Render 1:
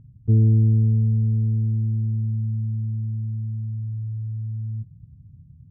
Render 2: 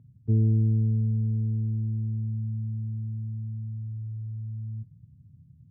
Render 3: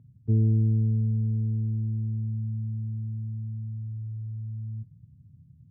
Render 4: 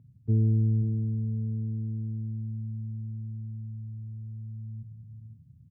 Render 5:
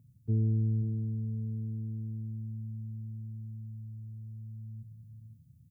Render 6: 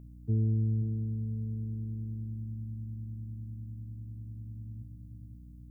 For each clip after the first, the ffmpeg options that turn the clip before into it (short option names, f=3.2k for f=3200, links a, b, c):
-af "highpass=96,volume=-4dB"
-af anull
-af "aecho=1:1:533:0.316,volume=-1.5dB"
-af "crystalizer=i=3:c=0,volume=-4.5dB"
-af "aeval=exprs='val(0)+0.00398*(sin(2*PI*60*n/s)+sin(2*PI*2*60*n/s)/2+sin(2*PI*3*60*n/s)/3+sin(2*PI*4*60*n/s)/4+sin(2*PI*5*60*n/s)/5)':c=same"